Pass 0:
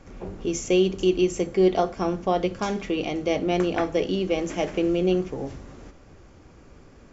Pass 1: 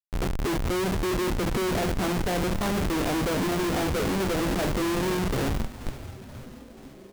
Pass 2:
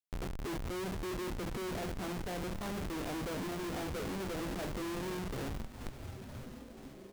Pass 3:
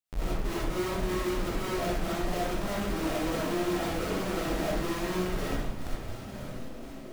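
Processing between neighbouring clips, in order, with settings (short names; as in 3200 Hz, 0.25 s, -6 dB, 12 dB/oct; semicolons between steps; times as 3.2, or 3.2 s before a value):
treble ducked by the level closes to 670 Hz, closed at -18.5 dBFS; Schmitt trigger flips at -34 dBFS; frequency-shifting echo 0.482 s, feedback 64%, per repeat -140 Hz, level -15 dB
compressor 6:1, threshold -33 dBFS, peak gain reduction 9 dB; gain -4.5 dB
digital reverb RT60 0.66 s, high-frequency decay 0.6×, pre-delay 20 ms, DRR -7.5 dB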